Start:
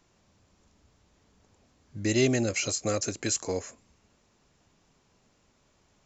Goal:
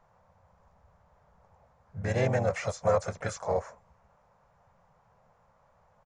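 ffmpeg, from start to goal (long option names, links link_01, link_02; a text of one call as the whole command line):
ffmpeg -i in.wav -filter_complex "[0:a]asplit=4[link_01][link_02][link_03][link_04];[link_02]asetrate=37084,aresample=44100,atempo=1.18921,volume=-5dB[link_05];[link_03]asetrate=55563,aresample=44100,atempo=0.793701,volume=-14dB[link_06];[link_04]asetrate=58866,aresample=44100,atempo=0.749154,volume=-16dB[link_07];[link_01][link_05][link_06][link_07]amix=inputs=4:normalize=0,firequalizer=gain_entry='entry(170,0);entry(300,-21);entry(510,5);entry(900,8);entry(2800,-13);entry(4200,-16)':delay=0.05:min_phase=1" out.wav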